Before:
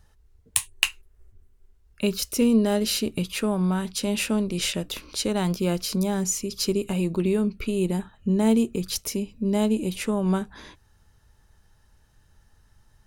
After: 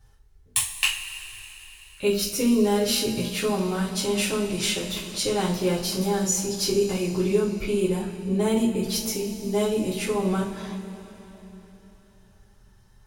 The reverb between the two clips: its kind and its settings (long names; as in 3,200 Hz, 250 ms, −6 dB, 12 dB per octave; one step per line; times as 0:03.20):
coupled-rooms reverb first 0.34 s, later 3.8 s, from −18 dB, DRR −7 dB
level −6 dB